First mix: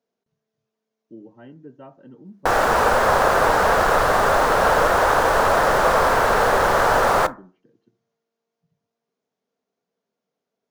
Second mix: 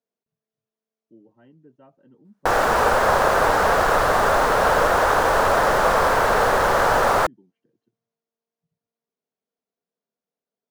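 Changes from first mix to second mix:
speech -8.5 dB; reverb: off

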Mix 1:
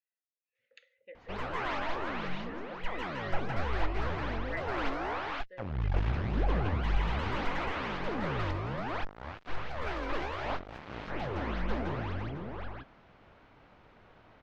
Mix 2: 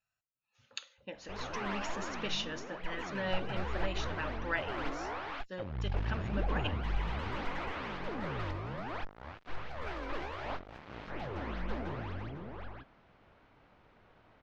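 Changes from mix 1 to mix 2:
speech: remove double band-pass 1000 Hz, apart 2 oct; background -4.5 dB

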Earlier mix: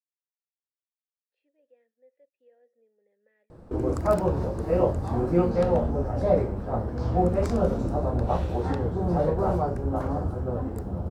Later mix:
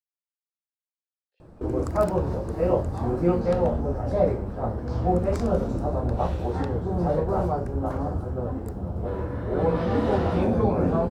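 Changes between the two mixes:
speech +6.5 dB; background: entry -2.10 s

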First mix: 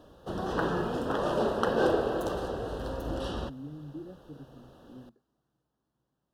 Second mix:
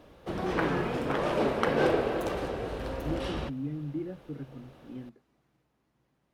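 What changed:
speech +7.0 dB; master: remove Butterworth band-stop 2200 Hz, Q 1.9

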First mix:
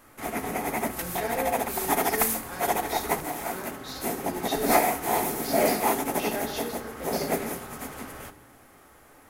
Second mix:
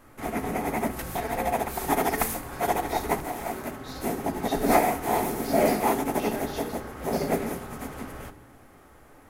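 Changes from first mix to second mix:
speech -5.0 dB; background: add tilt -1.5 dB/oct

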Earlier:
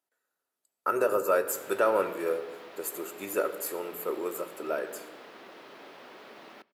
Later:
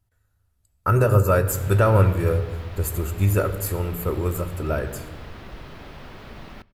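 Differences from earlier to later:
speech: add bell 80 Hz +12 dB 1.5 oct; master: remove ladder high-pass 260 Hz, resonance 20%

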